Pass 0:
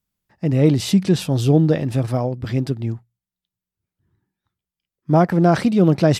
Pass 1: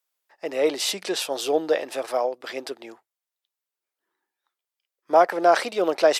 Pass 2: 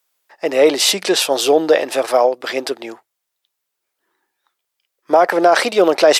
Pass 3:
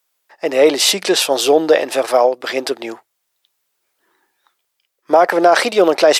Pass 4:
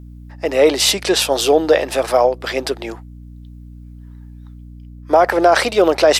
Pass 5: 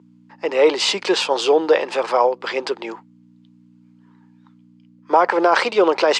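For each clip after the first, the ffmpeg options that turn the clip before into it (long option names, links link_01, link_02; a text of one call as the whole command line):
ffmpeg -i in.wav -af "highpass=frequency=470:width=0.5412,highpass=frequency=470:width=1.3066,volume=2dB" out.wav
ffmpeg -i in.wav -af "alimiter=level_in=12dB:limit=-1dB:release=50:level=0:latency=1,volume=-1dB" out.wav
ffmpeg -i in.wav -af "dynaudnorm=framelen=210:gausssize=5:maxgain=7dB" out.wav
ffmpeg -i in.wav -af "aeval=exprs='val(0)+0.02*(sin(2*PI*60*n/s)+sin(2*PI*2*60*n/s)/2+sin(2*PI*3*60*n/s)/3+sin(2*PI*4*60*n/s)/4+sin(2*PI*5*60*n/s)/5)':channel_layout=same,volume=-1dB" out.wav
ffmpeg -i in.wav -af "highpass=frequency=210:width=0.5412,highpass=frequency=210:width=1.3066,equalizer=frequency=270:width_type=q:width=4:gain=-9,equalizer=frequency=660:width_type=q:width=4:gain=-9,equalizer=frequency=960:width_type=q:width=4:gain=7,equalizer=frequency=1800:width_type=q:width=4:gain=-3,equalizer=frequency=3800:width_type=q:width=4:gain=-5,equalizer=frequency=5700:width_type=q:width=4:gain=-7,lowpass=frequency=6200:width=0.5412,lowpass=frequency=6200:width=1.3066" out.wav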